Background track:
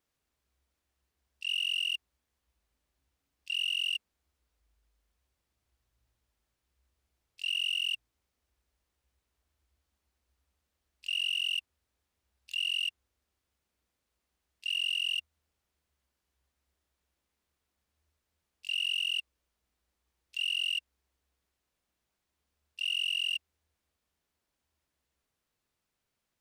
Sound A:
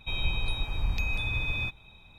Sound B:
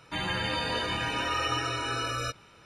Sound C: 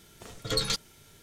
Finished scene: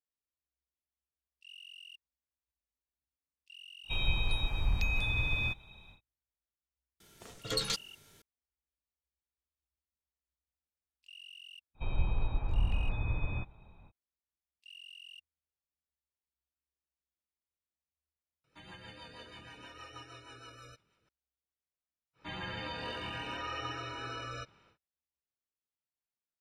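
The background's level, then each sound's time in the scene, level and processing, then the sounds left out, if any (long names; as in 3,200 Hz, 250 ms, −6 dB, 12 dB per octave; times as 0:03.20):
background track −20 dB
0:03.83: mix in A −1.5 dB, fades 0.10 s
0:07.00: mix in C −4.5 dB + low-shelf EQ 130 Hz −5.5 dB
0:11.74: mix in A −0.5 dB, fades 0.05 s + low-pass filter 1,200 Hz
0:18.44: overwrite with B −18 dB + rotating-speaker cabinet horn 6.3 Hz
0:22.13: mix in B −9 dB, fades 0.10 s + high-frequency loss of the air 100 metres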